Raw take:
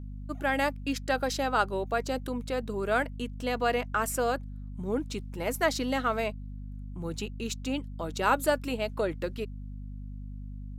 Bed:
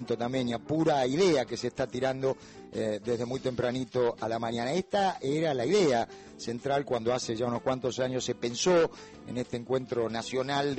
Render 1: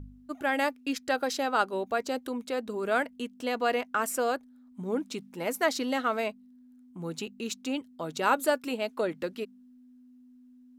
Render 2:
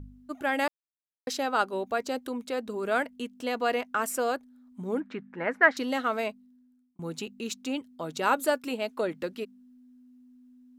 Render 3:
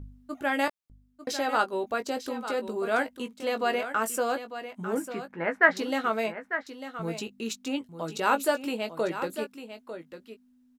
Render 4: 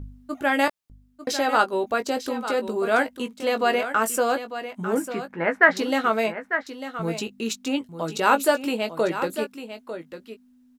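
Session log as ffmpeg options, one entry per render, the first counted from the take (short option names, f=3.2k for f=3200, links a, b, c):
-af "bandreject=f=50:t=h:w=4,bandreject=f=100:t=h:w=4,bandreject=f=150:t=h:w=4,bandreject=f=200:t=h:w=4"
-filter_complex "[0:a]asettb=1/sr,asplit=3[a][b][c];[a]atrim=end=5.004[d];[b]atrim=start=5:end=5.77,asetpts=PTS-STARTPTS,afade=t=in:d=0.004:c=qsin,afade=t=out:st=0.766:d=0.004:c=qsin,lowpass=f=1.7k:t=q:w=4.6[e];[c]atrim=start=5.766[f];[d][e]acrossfade=d=0.004:c1=hsin:c2=qsin[g];[g][f]acrossfade=d=0.004:c1=qsin:c2=hsin,asplit=4[h][i][j][k];[h]atrim=end=0.68,asetpts=PTS-STARTPTS,afade=t=out:st=0.676:d=0.004:c=hsin[l];[i]atrim=start=0.68:end=1.27,asetpts=PTS-STARTPTS,volume=0[m];[j]atrim=start=1.27:end=6.99,asetpts=PTS-STARTPTS,afade=t=in:d=0.004:c=hsin,afade=t=out:st=5.02:d=0.7[n];[k]atrim=start=6.99,asetpts=PTS-STARTPTS,afade=t=in:d=0.004:c=hsin[o];[l][m][n][o]concat=n=4:v=0:a=1"
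-filter_complex "[0:a]asplit=2[a][b];[b]adelay=18,volume=-8dB[c];[a][c]amix=inputs=2:normalize=0,asplit=2[d][e];[e]aecho=0:1:898:0.282[f];[d][f]amix=inputs=2:normalize=0"
-af "volume=5.5dB,alimiter=limit=-3dB:level=0:latency=1"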